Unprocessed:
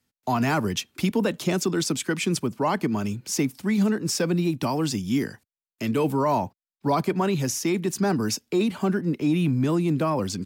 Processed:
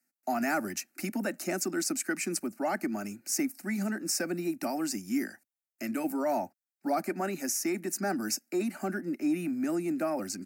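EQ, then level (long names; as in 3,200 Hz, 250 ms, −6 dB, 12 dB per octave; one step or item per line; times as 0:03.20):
Bessel high-pass filter 260 Hz, order 2
high-shelf EQ 5,900 Hz +5 dB
phaser with its sweep stopped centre 680 Hz, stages 8
−2.5 dB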